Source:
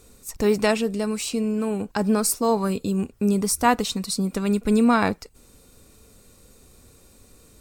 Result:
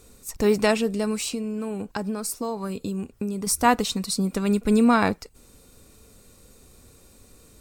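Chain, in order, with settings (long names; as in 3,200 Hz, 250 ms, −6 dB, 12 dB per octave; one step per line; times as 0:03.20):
0:01.27–0:03.47: downward compressor, threshold −26 dBFS, peak gain reduction 10 dB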